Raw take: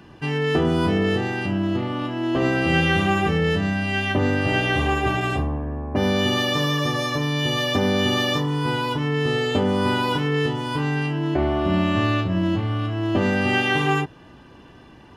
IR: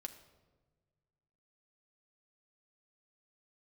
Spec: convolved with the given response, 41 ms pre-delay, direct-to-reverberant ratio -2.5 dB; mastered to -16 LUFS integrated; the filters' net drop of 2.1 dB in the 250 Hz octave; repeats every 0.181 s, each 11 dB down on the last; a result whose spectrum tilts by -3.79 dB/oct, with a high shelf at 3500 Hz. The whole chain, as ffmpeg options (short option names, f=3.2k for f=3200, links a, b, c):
-filter_complex "[0:a]equalizer=f=250:t=o:g=-3,highshelf=f=3.5k:g=8,aecho=1:1:181|362|543:0.282|0.0789|0.0221,asplit=2[a][b];[1:a]atrim=start_sample=2205,adelay=41[c];[b][c]afir=irnorm=-1:irlink=0,volume=6dB[d];[a][d]amix=inputs=2:normalize=0,volume=0.5dB"